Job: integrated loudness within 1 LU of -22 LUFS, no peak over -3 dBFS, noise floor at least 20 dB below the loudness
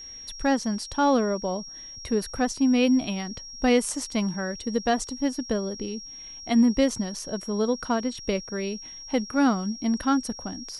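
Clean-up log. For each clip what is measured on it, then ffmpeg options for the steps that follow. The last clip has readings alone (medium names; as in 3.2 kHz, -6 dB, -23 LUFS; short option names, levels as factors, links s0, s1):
steady tone 5.6 kHz; tone level -39 dBFS; loudness -26.0 LUFS; peak level -9.5 dBFS; loudness target -22.0 LUFS
-> -af "bandreject=f=5600:w=30"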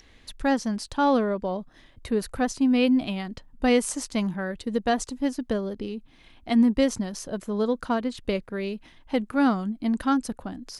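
steady tone not found; loudness -26.0 LUFS; peak level -10.0 dBFS; loudness target -22.0 LUFS
-> -af "volume=1.58"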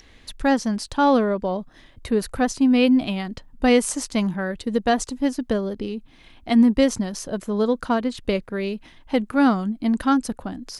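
loudness -22.0 LUFS; peak level -6.0 dBFS; noise floor -51 dBFS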